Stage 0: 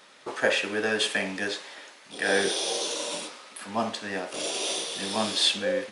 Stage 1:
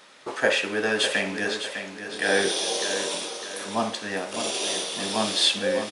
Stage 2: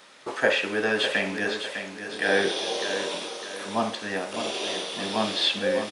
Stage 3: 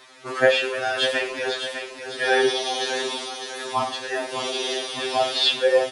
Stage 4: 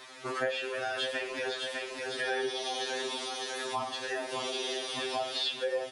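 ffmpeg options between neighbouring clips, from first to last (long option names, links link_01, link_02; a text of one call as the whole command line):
ffmpeg -i in.wav -af "aecho=1:1:604|1208|1812|2416:0.355|0.135|0.0512|0.0195,volume=2dB" out.wav
ffmpeg -i in.wav -filter_complex "[0:a]acrossover=split=4400[link_01][link_02];[link_02]acompressor=threshold=-44dB:ratio=4:attack=1:release=60[link_03];[link_01][link_03]amix=inputs=2:normalize=0" out.wav
ffmpeg -i in.wav -af "afftfilt=real='re*2.45*eq(mod(b,6),0)':imag='im*2.45*eq(mod(b,6),0)':win_size=2048:overlap=0.75,volume=5.5dB" out.wav
ffmpeg -i in.wav -af "acompressor=threshold=-34dB:ratio=3" out.wav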